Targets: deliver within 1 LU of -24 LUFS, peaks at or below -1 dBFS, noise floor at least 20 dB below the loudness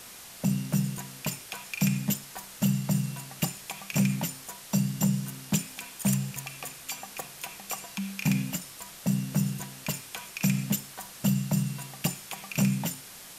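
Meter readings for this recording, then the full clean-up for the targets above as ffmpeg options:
noise floor -46 dBFS; noise floor target -51 dBFS; loudness -30.5 LUFS; peak level -13.5 dBFS; loudness target -24.0 LUFS
-> -af "afftdn=nr=6:nf=-46"
-af "volume=2.11"

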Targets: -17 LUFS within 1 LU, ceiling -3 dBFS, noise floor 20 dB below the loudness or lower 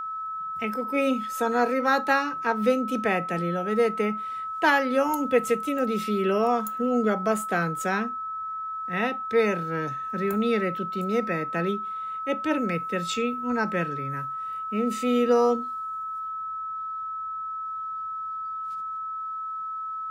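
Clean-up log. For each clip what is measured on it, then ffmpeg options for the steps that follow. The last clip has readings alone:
steady tone 1.3 kHz; tone level -30 dBFS; loudness -26.5 LUFS; peak level -8.5 dBFS; loudness target -17.0 LUFS
-> -af "bandreject=f=1300:w=30"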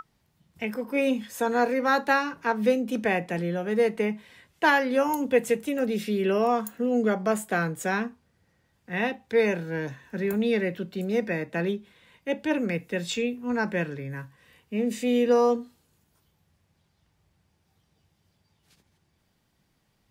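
steady tone not found; loudness -26.5 LUFS; peak level -9.5 dBFS; loudness target -17.0 LUFS
-> -af "volume=2.99,alimiter=limit=0.708:level=0:latency=1"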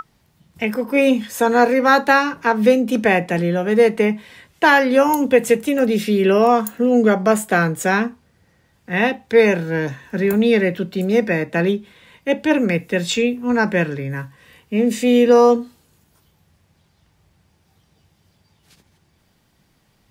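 loudness -17.0 LUFS; peak level -3.0 dBFS; noise floor -62 dBFS

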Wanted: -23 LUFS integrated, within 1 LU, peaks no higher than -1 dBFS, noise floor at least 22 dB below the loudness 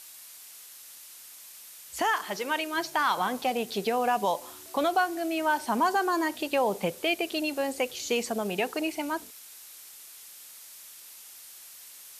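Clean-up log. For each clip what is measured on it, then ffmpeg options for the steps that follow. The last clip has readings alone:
noise floor -48 dBFS; noise floor target -51 dBFS; loudness -28.5 LUFS; peak level -15.5 dBFS; loudness target -23.0 LUFS
-> -af "afftdn=nr=6:nf=-48"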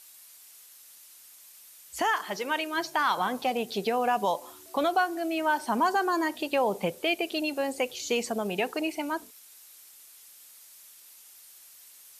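noise floor -53 dBFS; loudness -28.5 LUFS; peak level -15.5 dBFS; loudness target -23.0 LUFS
-> -af "volume=1.88"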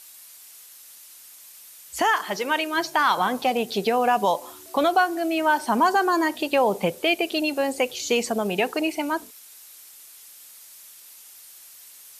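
loudness -23.0 LUFS; peak level -10.0 dBFS; noise floor -47 dBFS

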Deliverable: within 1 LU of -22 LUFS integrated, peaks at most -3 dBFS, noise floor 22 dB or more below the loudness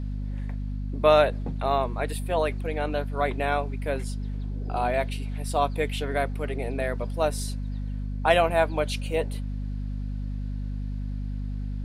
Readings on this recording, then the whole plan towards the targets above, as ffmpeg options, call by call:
hum 50 Hz; highest harmonic 250 Hz; hum level -28 dBFS; loudness -27.5 LUFS; peak level -5.0 dBFS; loudness target -22.0 LUFS
-> -af "bandreject=f=50:t=h:w=4,bandreject=f=100:t=h:w=4,bandreject=f=150:t=h:w=4,bandreject=f=200:t=h:w=4,bandreject=f=250:t=h:w=4"
-af "volume=1.88,alimiter=limit=0.708:level=0:latency=1"

